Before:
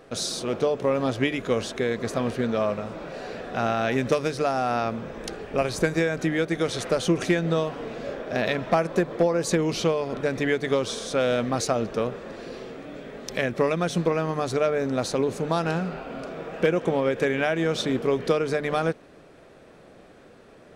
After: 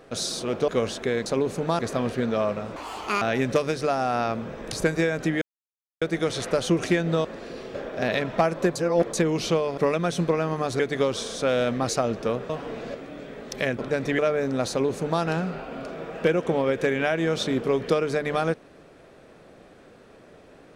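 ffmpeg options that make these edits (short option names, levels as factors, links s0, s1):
-filter_complex "[0:a]asplit=18[s0][s1][s2][s3][s4][s5][s6][s7][s8][s9][s10][s11][s12][s13][s14][s15][s16][s17];[s0]atrim=end=0.682[s18];[s1]atrim=start=1.418:end=2.002[s19];[s2]atrim=start=15.078:end=15.612[s20];[s3]atrim=start=1.998:end=2.974[s21];[s4]atrim=start=2.97:end=3.78,asetpts=PTS-STARTPTS,asetrate=78498,aresample=44100[s22];[s5]atrim=start=3.776:end=5.292[s23];[s6]atrim=start=5.708:end=6.4,asetpts=PTS-STARTPTS,afade=t=out:st=0.688:d=0.004:c=hsin,apad=pad_dur=0.6[s24];[s7]atrim=start=6.4:end=7.632,asetpts=PTS-STARTPTS,afade=t=in:d=0.004:c=hsin[s25];[s8]atrim=start=12.208:end=12.712[s26];[s9]atrim=start=8.078:end=9.092[s27];[s10]atrim=start=9.088:end=9.472,asetpts=PTS-STARTPTS,areverse[s28];[s11]atrim=start=9.468:end=10.112[s29];[s12]atrim=start=13.548:end=14.572[s30];[s13]atrim=start=10.508:end=12.212[s31];[s14]atrim=start=7.628:end=8.082[s32];[s15]atrim=start=12.708:end=13.552[s33];[s16]atrim=start=10.108:end=10.512[s34];[s17]atrim=start=14.568[s35];[s18][s19]acrossfade=d=0.004:c1=hsin:c2=hsin[s36];[s36][s20]acrossfade=d=0.004:c1=hsin:c2=hsin[s37];[s37][s21]acrossfade=d=0.004:c1=hsin:c2=hsin[s38];[s38][s22]acrossfade=d=0.004:c1=hsin:c2=hsin[s39];[s39][s23]acrossfade=d=0.004:c1=hsin:c2=hsin[s40];[s24][s25]concat=n=2:v=0:a=1[s41];[s40][s41]acrossfade=d=0.004:c1=hsin:c2=hsin[s42];[s42][s26]acrossfade=d=0.004:c1=hsin:c2=hsin[s43];[s43][s27]acrossfade=d=0.004:c1=hsin:c2=hsin[s44];[s44][s28]acrossfade=d=0.004:c1=hsin:c2=hsin[s45];[s45][s29]acrossfade=d=0.004:c1=hsin:c2=hsin[s46];[s46][s30]acrossfade=d=0.004:c1=hsin:c2=hsin[s47];[s47][s31]acrossfade=d=0.004:c1=hsin:c2=hsin[s48];[s48][s32]acrossfade=d=0.004:c1=hsin:c2=hsin[s49];[s49][s33]acrossfade=d=0.004:c1=hsin:c2=hsin[s50];[s50][s34]acrossfade=d=0.004:c1=hsin:c2=hsin[s51];[s51][s35]acrossfade=d=0.004:c1=hsin:c2=hsin"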